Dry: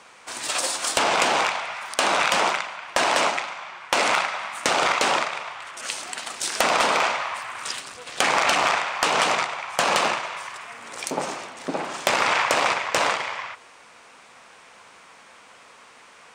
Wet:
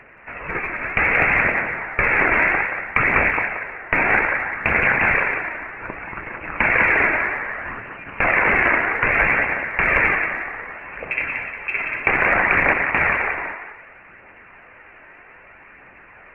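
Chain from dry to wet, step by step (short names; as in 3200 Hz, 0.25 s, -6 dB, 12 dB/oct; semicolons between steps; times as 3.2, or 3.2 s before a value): inverted band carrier 2900 Hz; thinning echo 0.178 s, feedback 36%, high-pass 790 Hz, level -4.5 dB; phaser 0.63 Hz, delay 3.3 ms, feedback 28%; gain +3 dB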